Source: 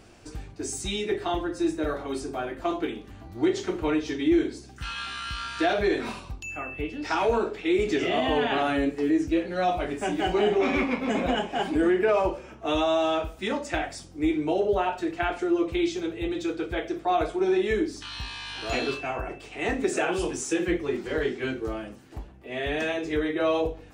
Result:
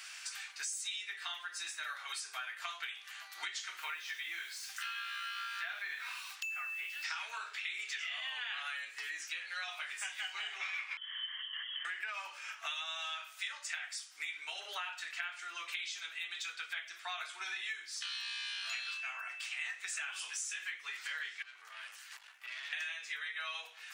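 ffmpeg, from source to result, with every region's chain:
-filter_complex "[0:a]asettb=1/sr,asplit=3[a][b][c];[a]atrim=end=3.774[d];[b]atrim=start=3.77:end=7.04,asetpts=PTS-STARTPTS,afade=t=in:d=0.004:c=qsin,afade=t=out:st=3.266:d=0.004:c=qsin,bandreject=f=540:w=16,acrossover=split=2600[e][f];[f]acompressor=threshold=-49dB:ratio=4:attack=1:release=60[g];[e][g]amix=inputs=2:normalize=0,acrusher=bits=8:mix=0:aa=0.5[h];[c]atrim=start=7.036[i];[d][h]acrossfade=d=0.004:c1=hsin:c2=qsin[j];[j][i]acrossfade=d=0.004:c1=qsin:c2=hsin,asettb=1/sr,asplit=3[k][l][m];[k]atrim=end=10.974[n];[l]atrim=start=10.97:end=11.85,asetpts=PTS-STARTPTS,afade=t=in:d=0.004:c=qsin,afade=t=out:st=0.876:d=0.004:c=qsin,aeval=exprs='0.0473*(abs(mod(val(0)/0.0473+3,4)-2)-1)':c=same,asplit=3[o][p][q];[o]bandpass=f=530:t=q:w=8,volume=0dB[r];[p]bandpass=f=1.84k:t=q:w=8,volume=-6dB[s];[q]bandpass=f=2.48k:t=q:w=8,volume=-9dB[t];[r][s][t]amix=inputs=3:normalize=0,lowpass=f=3.1k:t=q:w=0.5098,lowpass=f=3.1k:t=q:w=0.6013,lowpass=f=3.1k:t=q:w=0.9,lowpass=f=3.1k:t=q:w=2.563,afreqshift=-3600[u];[m]atrim=start=11.846[v];[n][u]acrossfade=d=0.004:c1=hsin:c2=qsin[w];[w][v]acrossfade=d=0.004:c1=qsin:c2=hsin,asettb=1/sr,asplit=3[x][y][z];[x]atrim=end=21.424[aa];[y]atrim=start=21.42:end=22.73,asetpts=PTS-STARTPTS,afade=t=in:d=0.004:c=qsin,afade=t=out:st=1.306:d=0.004:c=qsin,equalizer=f=390:w=4.9:g=6,acompressor=threshold=-38dB:ratio=10:attack=3.2:release=140:knee=1:detection=peak,aeval=exprs='(tanh(126*val(0)+0.5)-tanh(0.5))/126':c=same[ab];[z]atrim=start=22.726[ac];[aa][ab]acrossfade=d=0.004:c1=hsin:c2=qsin[ad];[ad][ac]acrossfade=d=0.004:c1=qsin:c2=hsin,highpass=f=1.5k:w=0.5412,highpass=f=1.5k:w=1.3066,acompressor=threshold=-51dB:ratio=6,volume=11.5dB"

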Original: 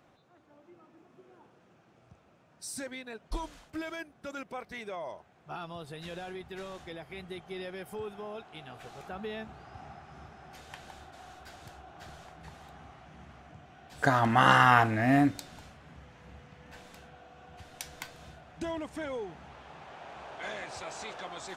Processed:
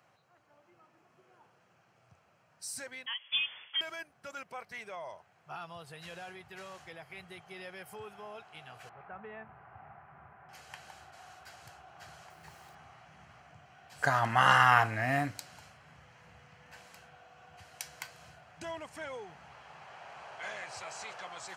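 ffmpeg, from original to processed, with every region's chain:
-filter_complex "[0:a]asettb=1/sr,asplit=3[a][b][c];[a]atrim=end=3.064[d];[b]atrim=start=3.06:end=3.81,asetpts=PTS-STARTPTS,afade=t=in:d=0.004:c=qsin,afade=t=out:st=0.746:d=0.004:c=qsin,acontrast=54,lowpass=f=3k:t=q:w=0.5098,lowpass=f=3k:t=q:w=0.6013,lowpass=f=3k:t=q:w=0.9,lowpass=f=3k:t=q:w=2.563,afreqshift=-3500[e];[c]atrim=start=3.806[f];[d][e]acrossfade=d=0.004:c1=hsin:c2=qsin[g];[g][f]acrossfade=d=0.004:c1=qsin:c2=hsin,asettb=1/sr,asplit=3[h][i][j];[h]atrim=end=8.894[k];[i]atrim=start=8.89:end=10.49,asetpts=PTS-STARTPTS,afade=t=in:d=0.004:c=qsin,afade=t=out:st=1.596:d=0.004:c=qsin,aeval=exprs='if(lt(val(0),0),0.708*val(0),val(0))':c=same,lowpass=f=2.1k:w=0.5412,lowpass=f=2.1k:w=1.3066,aeval=exprs='val(0)+0.000708*sin(2*PI*1000*n/s)':c=same[l];[j]atrim=start=10.486[m];[k][l]acrossfade=d=0.004:c1=hsin:c2=qsin[n];[n][m]acrossfade=d=0.004:c1=qsin:c2=hsin,asettb=1/sr,asplit=3[o][p][q];[o]atrim=end=12.304[r];[p]atrim=start=12.3:end=12.75,asetpts=PTS-STARTPTS,afade=t=in:d=0.004:c=qsin,afade=t=out:st=0.446:d=0.004:c=qsin,equalizer=f=360:t=o:w=0.24:g=7.5,aeval=exprs='val(0)*gte(abs(val(0)),0.00141)':c=same[s];[q]atrim=start=12.746[t];[r][s]acrossfade=d=0.004:c1=hsin:c2=qsin[u];[u][t]acrossfade=d=0.004:c1=qsin:c2=hsin,highpass=f=95:w=0.5412,highpass=f=95:w=1.3066,equalizer=f=280:t=o:w=1.6:g=-13.5,bandreject=f=3.6k:w=7.1"

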